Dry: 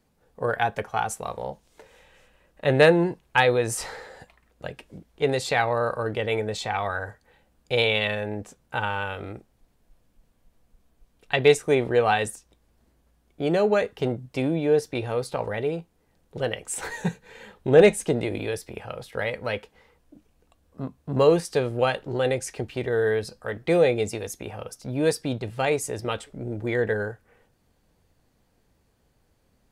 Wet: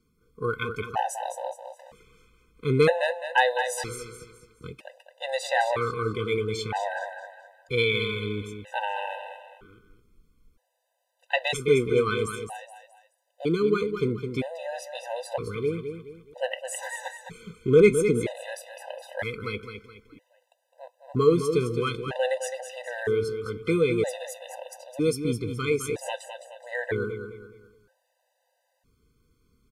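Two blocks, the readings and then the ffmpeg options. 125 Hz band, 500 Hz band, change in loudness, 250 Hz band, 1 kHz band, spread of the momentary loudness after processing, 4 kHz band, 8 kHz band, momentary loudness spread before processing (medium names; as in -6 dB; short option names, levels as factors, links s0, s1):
-1.5 dB, -2.5 dB, -2.5 dB, -1.5 dB, -2.5 dB, 19 LU, -2.5 dB, -3.0 dB, 16 LU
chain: -af "aecho=1:1:211|422|633|844:0.398|0.143|0.0516|0.0186,afftfilt=real='re*gt(sin(2*PI*0.52*pts/sr)*(1-2*mod(floor(b*sr/1024/510),2)),0)':imag='im*gt(sin(2*PI*0.52*pts/sr)*(1-2*mod(floor(b*sr/1024/510),2)),0)':win_size=1024:overlap=0.75"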